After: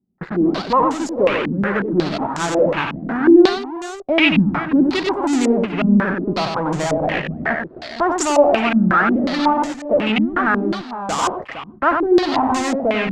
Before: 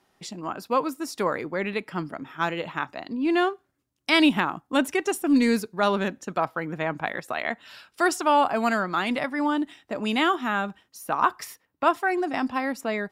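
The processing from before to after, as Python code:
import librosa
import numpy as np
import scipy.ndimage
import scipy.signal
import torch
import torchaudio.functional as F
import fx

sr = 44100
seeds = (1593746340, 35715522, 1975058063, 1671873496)

p1 = fx.wiener(x, sr, points=15)
p2 = fx.fuzz(p1, sr, gain_db=46.0, gate_db=-52.0)
p3 = p1 + F.gain(torch.from_numpy(p2), -6.0).numpy()
p4 = fx.echo_multitap(p3, sr, ms=(93, 404, 460), db=(-5.0, -19.0, -10.5))
p5 = fx.filter_held_lowpass(p4, sr, hz=5.5, low_hz=210.0, high_hz=7200.0)
y = F.gain(torch.from_numpy(p5), -4.5).numpy()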